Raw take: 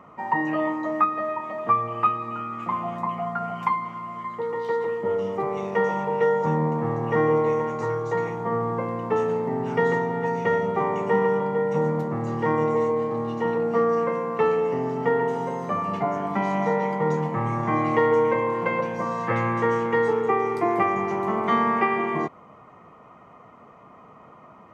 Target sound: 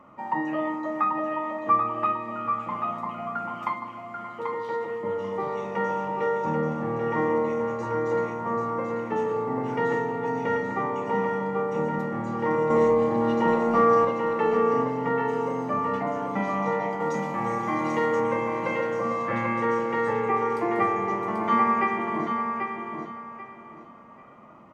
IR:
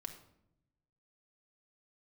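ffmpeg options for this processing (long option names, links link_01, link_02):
-filter_complex "[0:a]asettb=1/sr,asplit=3[link_01][link_02][link_03];[link_01]atrim=end=12.704[link_04];[link_02]atrim=start=12.7:end=14.05,asetpts=PTS-STARTPTS,afade=type=in:duration=0.004:curve=qsin,afade=type=out:start_time=1.346:duration=0.004:curve=qsin,acontrast=85[link_05];[link_03]atrim=start=14.046[link_06];[link_04][link_05]acrossfade=duration=0.004:curve1=hsin:curve2=qsin[link_07];[link_07][link_06]acrossfade=duration=0.004:curve1=qsin:curve2=hsin,asettb=1/sr,asplit=3[link_08][link_09][link_10];[link_08]atrim=end=17.004[link_11];[link_09]atrim=start=17:end=18.2,asetpts=PTS-STARTPTS,afade=type=in:duration=0.004:curve=qsin,afade=type=out:start_time=1.196:duration=0.004:curve=qsin,bass=frequency=250:gain=-5,treble=frequency=4000:gain=10[link_12];[link_10]atrim=start=18.196[link_13];[link_11][link_12]acrossfade=duration=0.004:curve1=hsin:curve2=qsin[link_14];[link_14][link_13]acrossfade=duration=0.004:curve1=qsin:curve2=hsin,aecho=1:1:787|1574|2361:0.501|0.13|0.0339[link_15];[1:a]atrim=start_sample=2205,atrim=end_sample=3528,asetrate=52920,aresample=44100[link_16];[link_15][link_16]afir=irnorm=-1:irlink=0,volume=2dB"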